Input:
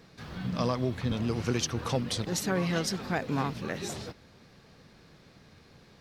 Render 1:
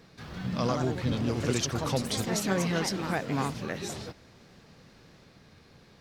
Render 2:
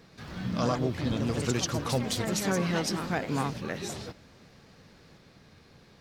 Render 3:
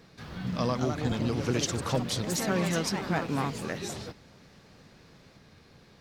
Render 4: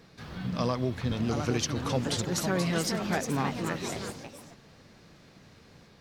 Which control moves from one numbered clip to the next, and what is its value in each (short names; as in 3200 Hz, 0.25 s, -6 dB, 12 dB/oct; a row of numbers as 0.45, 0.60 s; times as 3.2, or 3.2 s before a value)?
echoes that change speed, time: 0.19, 0.123, 0.316, 0.816 s